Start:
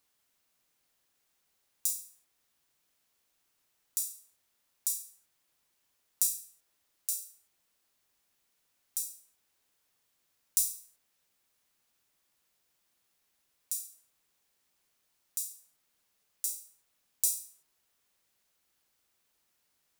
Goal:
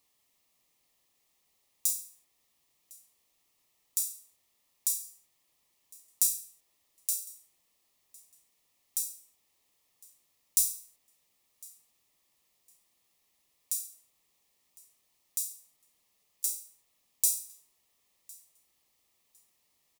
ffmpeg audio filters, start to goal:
ffmpeg -i in.wav -filter_complex "[0:a]asplit=2[link_01][link_02];[link_02]volume=15dB,asoftclip=hard,volume=-15dB,volume=-4.5dB[link_03];[link_01][link_03]amix=inputs=2:normalize=0,asuperstop=centerf=1500:order=4:qfactor=3.6,aecho=1:1:1056|2112:0.0631|0.012,volume=-1.5dB" out.wav

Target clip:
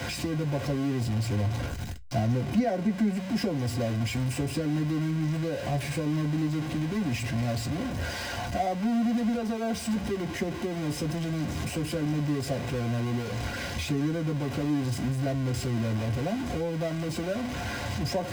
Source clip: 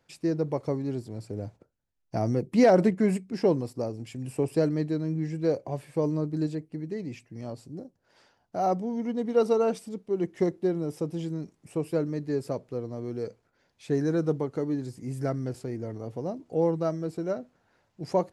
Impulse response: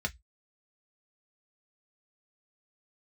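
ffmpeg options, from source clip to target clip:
-filter_complex "[0:a]aeval=exprs='val(0)+0.5*0.0596*sgn(val(0))':channel_layout=same,acompressor=threshold=-22dB:ratio=6[link_01];[1:a]atrim=start_sample=2205,asetrate=48510,aresample=44100[link_02];[link_01][link_02]afir=irnorm=-1:irlink=0,volume=-7dB"

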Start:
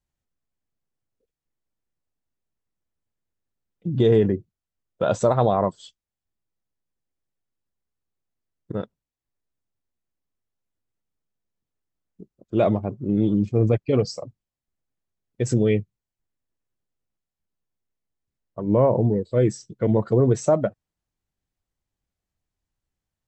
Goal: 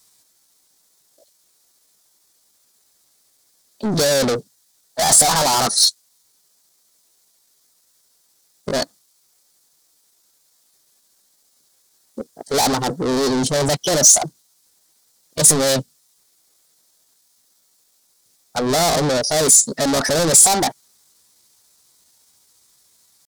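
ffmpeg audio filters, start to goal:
ffmpeg -i in.wav -filter_complex "[0:a]asplit=2[link_01][link_02];[link_02]highpass=frequency=720:poles=1,volume=37dB,asoftclip=type=tanh:threshold=-7dB[link_03];[link_01][link_03]amix=inputs=2:normalize=0,lowpass=frequency=2500:poles=1,volume=-6dB,aexciter=amount=8.5:drive=4.3:freq=3100,asetrate=55563,aresample=44100,atempo=0.793701,volume=-5dB" out.wav

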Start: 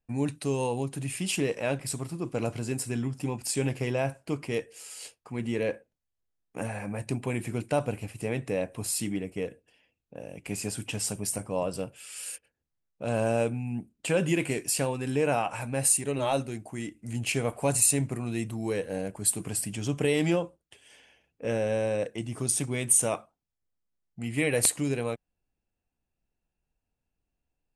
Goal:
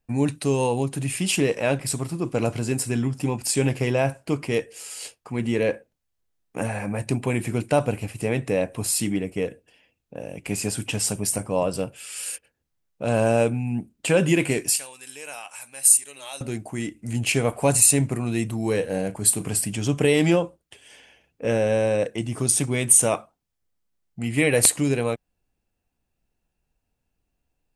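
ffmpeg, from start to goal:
ffmpeg -i in.wav -filter_complex "[0:a]asettb=1/sr,asplit=3[link_01][link_02][link_03];[link_01]atrim=end=14.764[link_04];[link_02]atrim=start=14.76:end=16.41,asetpts=PTS-STARTPTS,afade=type=in:duration=0.004:curve=qsin,afade=type=out:start_time=1.646:duration=0.004:curve=qsin,aderivative[link_05];[link_03]atrim=start=16.406[link_06];[link_04][link_05]acrossfade=duration=0.004:curve1=hsin:curve2=qsin[link_07];[link_07][link_06]acrossfade=duration=0.004:curve1=qsin:curve2=hsin,asettb=1/sr,asplit=3[link_08][link_09][link_10];[link_08]atrim=end=18.644[link_11];[link_09]atrim=start=18.64:end=19.58,asetpts=PTS-STARTPTS,afade=type=in:duration=0.004:curve=qsin,afade=type=out:start_time=0.936:duration=0.004:curve=qsin,asplit=2[link_12][link_13];[link_13]adelay=37,volume=-13dB[link_14];[link_12][link_14]amix=inputs=2:normalize=0,atrim=end_sample=41454[link_15];[link_10]atrim=start=19.576[link_16];[link_11][link_15]acrossfade=duration=0.004:curve1=hsin:curve2=qsin[link_17];[link_17][link_16]acrossfade=duration=0.004:curve1=qsin:curve2=hsin,volume=6.5dB" out.wav

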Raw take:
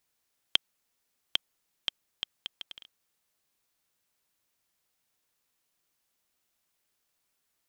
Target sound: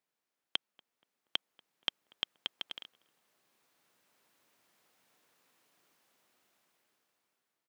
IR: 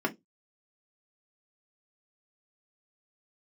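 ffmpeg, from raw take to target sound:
-filter_complex "[0:a]highpass=180,highshelf=frequency=3200:gain=-11,dynaudnorm=framelen=650:gausssize=5:maxgain=17dB,asplit=2[link_01][link_02];[link_02]adelay=238,lowpass=frequency=1600:poles=1,volume=-24dB,asplit=2[link_03][link_04];[link_04]adelay=238,lowpass=frequency=1600:poles=1,volume=0.47,asplit=2[link_05][link_06];[link_06]adelay=238,lowpass=frequency=1600:poles=1,volume=0.47[link_07];[link_03][link_05][link_07]amix=inputs=3:normalize=0[link_08];[link_01][link_08]amix=inputs=2:normalize=0,volume=-3.5dB"

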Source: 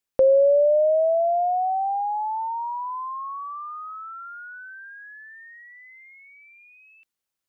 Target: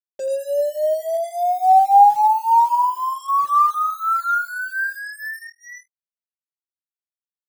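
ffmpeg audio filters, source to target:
ffmpeg -i in.wav -filter_complex "[0:a]agate=range=-33dB:threshold=-40dB:ratio=3:detection=peak,asplit=3[link_01][link_02][link_03];[link_01]afade=type=out:start_time=2.74:duration=0.02[link_04];[link_02]bandpass=frequency=300:width_type=q:width=0.69:csg=0,afade=type=in:start_time=2.74:duration=0.02,afade=type=out:start_time=3.28:duration=0.02[link_05];[link_03]afade=type=in:start_time=3.28:duration=0.02[link_06];[link_04][link_05][link_06]amix=inputs=3:normalize=0,alimiter=limit=-22dB:level=0:latency=1,asettb=1/sr,asplit=3[link_07][link_08][link_09];[link_07]atrim=end=1.144[link_10];[link_08]atrim=start=1.14:end=2.08,asetpts=PTS-STARTPTS,afade=type=in:duration=0.004:curve=qsin,afade=type=out:start_time=0.936:duration=0.004:curve=qsin,highpass=200[link_11];[link_09]atrim=start=2.076[link_12];[link_10][link_11]acrossfade=duration=0.004:curve1=hsin:curve2=qsin[link_13];[link_13][link_12]acrossfade=duration=0.004:curve1=qsin:curve2=hsin,aecho=1:1:5.1:0.46,dynaudnorm=framelen=410:gausssize=9:maxgain=16dB,aecho=1:1:87|174|261:0.133|0.0493|0.0183,afftdn=noise_reduction=17:noise_floor=-31,bandreject=frequency=50:width_type=h:width=6,bandreject=frequency=100:width_type=h:width=6,bandreject=frequency=150:width_type=h:width=6,bandreject=frequency=200:width_type=h:width=6,bandreject=frequency=250:width_type=h:width=6,bandreject=frequency=300:width_type=h:width=6,bandreject=frequency=350:width_type=h:width=6,bandreject=frequency=400:width_type=h:width=6,bandreject=frequency=450:width_type=h:width=6,acrusher=bits=5:mix=0:aa=0.5,asplit=2[link_14][link_15];[link_15]adelay=3.6,afreqshift=-2.8[link_16];[link_14][link_16]amix=inputs=2:normalize=1,volume=3dB" out.wav

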